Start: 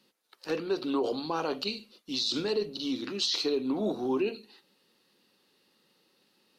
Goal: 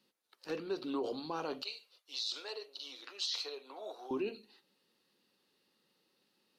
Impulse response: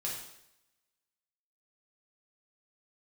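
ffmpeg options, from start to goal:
-filter_complex "[0:a]asettb=1/sr,asplit=3[a][b][c];[a]atrim=end=1.624[d];[b]atrim=start=1.62:end=4.11,asetpts=PTS-STARTPTS,afade=t=in:d=0.004:c=qsin,afade=t=out:st=2.486:d=0.004:c=qsin,highpass=f=550:w=0.5412,highpass=f=550:w=1.3066[e];[c]atrim=start=4.106[f];[d][e]acrossfade=d=0.004:c1=hsin:c2=qsin[g];[g][f]acrossfade=d=0.004:c1=qsin:c2=hsin,volume=-7.5dB"

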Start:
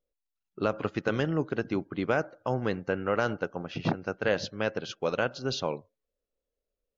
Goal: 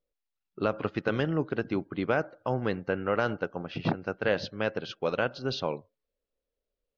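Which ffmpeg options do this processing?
-af "lowpass=f=5k:w=0.5412,lowpass=f=5k:w=1.3066"

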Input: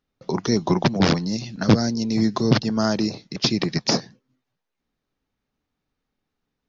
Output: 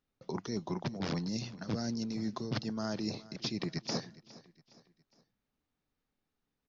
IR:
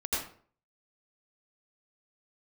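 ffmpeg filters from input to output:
-af "areverse,acompressor=threshold=-26dB:ratio=10,areverse,aecho=1:1:412|824|1236:0.106|0.0466|0.0205,volume=-6dB"

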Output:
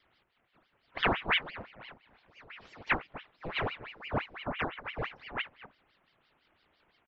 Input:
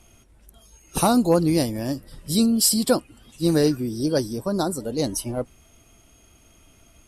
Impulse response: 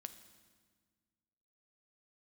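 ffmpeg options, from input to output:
-filter_complex "[0:a]asettb=1/sr,asplit=3[a][b][c];[a]atrim=end=1.504[d];[b]atrim=start=1.5:end=2.5,asetpts=PTS-STARTPTS,afade=t=in:d=0.004:c=qsin,afade=t=out:st=0.996:d=0.004:c=qsin,acompressor=threshold=-35dB:ratio=3[e];[c]atrim=start=2.496[f];[d][e]acrossfade=d=0.004:c1=hsin:c2=qsin[g];[g][f]acrossfade=d=0.004:c1=qsin:c2=hsin,asplit=2[h][i];[i]adelay=244.9,volume=-16dB,highshelf=f=4k:g=-5.51[j];[h][j]amix=inputs=2:normalize=0[k];[1:a]atrim=start_sample=2205,atrim=end_sample=4410,asetrate=52920,aresample=44100[l];[k][l]afir=irnorm=-1:irlink=0,highpass=f=510:t=q:w=0.5412,highpass=f=510:t=q:w=1.307,lowpass=f=2.3k:t=q:w=0.5176,lowpass=f=2.3k:t=q:w=0.7071,lowpass=f=2.3k:t=q:w=1.932,afreqshift=-180,aeval=exprs='val(0)*sin(2*PI*1400*n/s+1400*0.9/5.9*sin(2*PI*5.9*n/s))':c=same,volume=4dB"

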